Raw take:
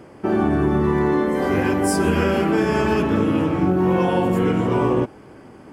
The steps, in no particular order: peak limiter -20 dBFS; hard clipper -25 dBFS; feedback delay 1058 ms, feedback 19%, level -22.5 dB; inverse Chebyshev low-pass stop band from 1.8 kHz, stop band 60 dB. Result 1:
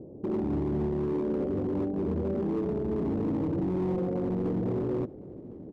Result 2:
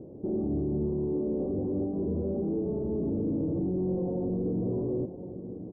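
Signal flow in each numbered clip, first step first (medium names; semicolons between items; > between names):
peak limiter > inverse Chebyshev low-pass > hard clipper > feedback delay; feedback delay > peak limiter > hard clipper > inverse Chebyshev low-pass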